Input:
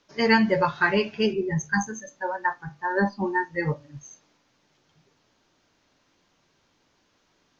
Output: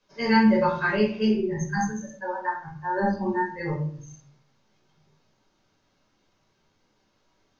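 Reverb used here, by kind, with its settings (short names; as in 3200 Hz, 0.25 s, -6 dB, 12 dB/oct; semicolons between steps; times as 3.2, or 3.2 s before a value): shoebox room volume 440 m³, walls furnished, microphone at 5.3 m; gain -11 dB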